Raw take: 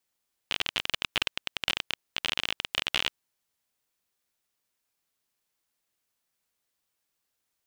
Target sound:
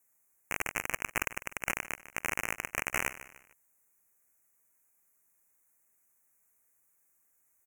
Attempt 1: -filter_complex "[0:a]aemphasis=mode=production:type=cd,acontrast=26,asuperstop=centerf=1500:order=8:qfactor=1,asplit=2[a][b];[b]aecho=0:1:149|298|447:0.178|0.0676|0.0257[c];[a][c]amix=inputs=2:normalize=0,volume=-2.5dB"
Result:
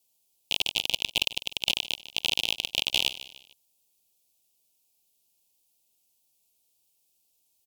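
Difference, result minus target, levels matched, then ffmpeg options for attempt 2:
4000 Hz band +15.0 dB
-filter_complex "[0:a]aemphasis=mode=production:type=cd,acontrast=26,asuperstop=centerf=3900:order=8:qfactor=1,asplit=2[a][b];[b]aecho=0:1:149|298|447:0.178|0.0676|0.0257[c];[a][c]amix=inputs=2:normalize=0,volume=-2.5dB"

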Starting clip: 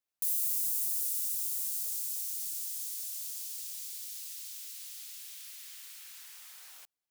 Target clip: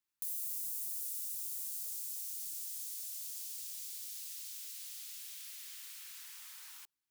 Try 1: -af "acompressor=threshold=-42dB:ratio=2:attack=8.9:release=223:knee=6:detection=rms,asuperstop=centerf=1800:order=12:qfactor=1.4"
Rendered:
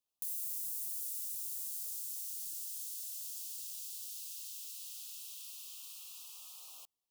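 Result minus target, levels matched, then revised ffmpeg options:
2000 Hz band -6.5 dB
-af "acompressor=threshold=-42dB:ratio=2:attack=8.9:release=223:knee=6:detection=rms,asuperstop=centerf=580:order=12:qfactor=1.4"

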